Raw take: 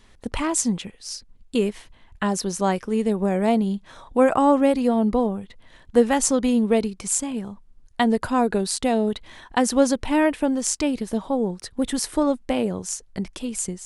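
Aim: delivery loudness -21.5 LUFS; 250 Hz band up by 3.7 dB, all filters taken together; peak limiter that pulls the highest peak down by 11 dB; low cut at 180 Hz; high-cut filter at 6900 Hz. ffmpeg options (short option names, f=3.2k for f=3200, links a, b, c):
-af "highpass=180,lowpass=6.9k,equalizer=f=250:t=o:g=5.5,volume=3dB,alimiter=limit=-11.5dB:level=0:latency=1"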